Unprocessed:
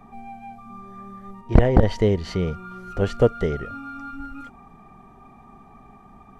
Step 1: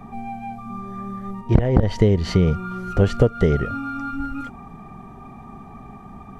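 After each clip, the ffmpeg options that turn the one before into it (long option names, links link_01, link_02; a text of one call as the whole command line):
ffmpeg -i in.wav -af "equalizer=frequency=120:width_type=o:width=2.3:gain=5.5,acompressor=threshold=-17dB:ratio=10,volume=6dB" out.wav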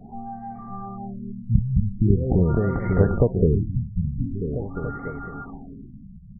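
ffmpeg -i in.wav -af "aecho=1:1:550|990|1342|1624|1849:0.631|0.398|0.251|0.158|0.1,afftfilt=real='re*lt(b*sr/1024,210*pow(2300/210,0.5+0.5*sin(2*PI*0.44*pts/sr)))':imag='im*lt(b*sr/1024,210*pow(2300/210,0.5+0.5*sin(2*PI*0.44*pts/sr)))':win_size=1024:overlap=0.75,volume=-3dB" out.wav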